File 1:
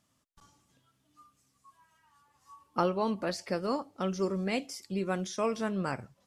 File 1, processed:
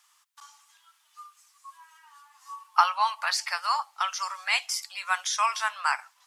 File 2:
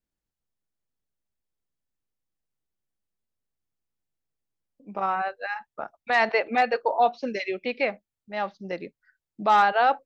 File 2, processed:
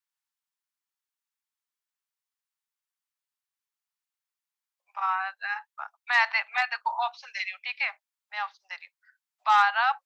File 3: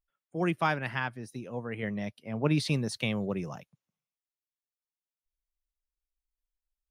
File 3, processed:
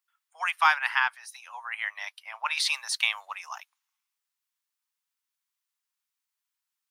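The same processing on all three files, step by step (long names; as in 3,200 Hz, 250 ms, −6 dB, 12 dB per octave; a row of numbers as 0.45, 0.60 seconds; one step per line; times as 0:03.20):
Butterworth high-pass 870 Hz 48 dB per octave
loudness normalisation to −27 LKFS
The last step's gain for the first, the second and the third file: +12.5, +1.5, +9.0 decibels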